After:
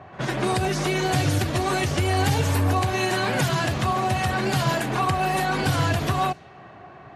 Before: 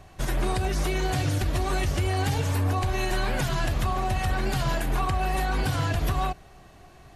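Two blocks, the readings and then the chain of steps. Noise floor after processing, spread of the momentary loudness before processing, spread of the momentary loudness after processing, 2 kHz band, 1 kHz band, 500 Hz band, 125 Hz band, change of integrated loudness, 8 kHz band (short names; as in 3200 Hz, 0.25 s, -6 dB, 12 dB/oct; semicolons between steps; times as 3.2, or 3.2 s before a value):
-45 dBFS, 2 LU, 2 LU, +5.5 dB, +5.5 dB, +5.5 dB, +2.5 dB, +4.0 dB, +5.0 dB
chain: HPF 97 Hz 24 dB/oct; pre-echo 65 ms -19 dB; low-pass opened by the level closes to 1200 Hz, open at -24 dBFS; mismatched tape noise reduction encoder only; gain +5.5 dB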